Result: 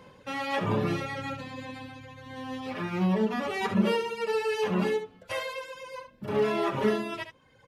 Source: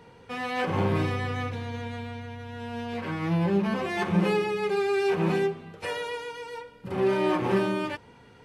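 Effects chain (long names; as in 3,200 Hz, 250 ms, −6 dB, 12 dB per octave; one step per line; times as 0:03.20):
speed change +10%
reverb reduction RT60 1.2 s
single-tap delay 70 ms −10 dB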